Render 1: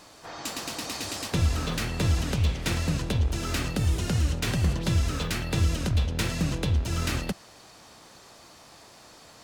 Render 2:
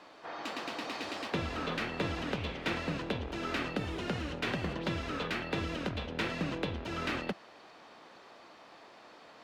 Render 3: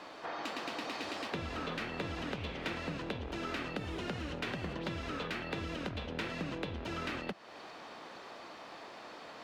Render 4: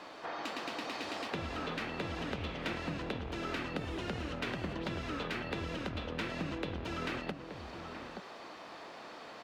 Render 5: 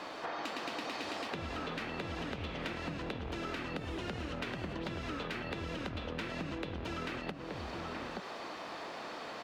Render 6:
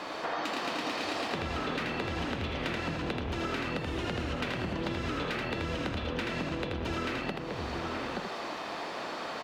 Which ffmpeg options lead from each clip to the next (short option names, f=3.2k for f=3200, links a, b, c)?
-filter_complex "[0:a]acrossover=split=210 3700:gain=0.126 1 0.0794[a][b][c];[a][b][c]amix=inputs=3:normalize=0,volume=-1dB"
-af "acompressor=threshold=-44dB:ratio=3,volume=5.5dB"
-filter_complex "[0:a]asplit=2[a][b];[b]adelay=874.6,volume=-7dB,highshelf=f=4k:g=-19.7[c];[a][c]amix=inputs=2:normalize=0"
-af "acompressor=threshold=-41dB:ratio=6,volume=5dB"
-af "aecho=1:1:81:0.631,volume=4.5dB"